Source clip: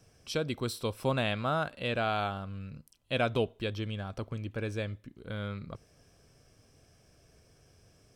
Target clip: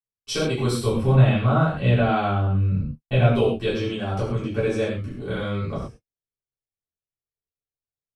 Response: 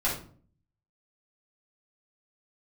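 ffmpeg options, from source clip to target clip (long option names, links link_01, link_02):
-filter_complex "[0:a]agate=range=-60dB:threshold=-50dB:ratio=16:detection=peak,asettb=1/sr,asplit=3[link_01][link_02][link_03];[link_01]atrim=end=0.844[link_04];[link_02]atrim=start=0.84:end=3.34,asetpts=PTS-STARTPTS,afade=type=in:duration=0.004:curve=qsin,afade=type=out:start_time=2.496:duration=0.004:curve=qsin,bass=frequency=250:gain=11,treble=frequency=4000:gain=-9[link_05];[link_03]atrim=start=3.336[link_06];[link_04][link_05]acrossfade=duration=0.004:curve1=hsin:curve2=qsin[link_07];[link_07][link_06]acrossfade=duration=0.004:curve1=qsin:curve2=hsin,acompressor=threshold=-43dB:ratio=2[link_08];[1:a]atrim=start_sample=2205,atrim=end_sample=3528,asetrate=24255,aresample=44100[link_09];[link_08][link_09]afir=irnorm=-1:irlink=0,volume=4dB"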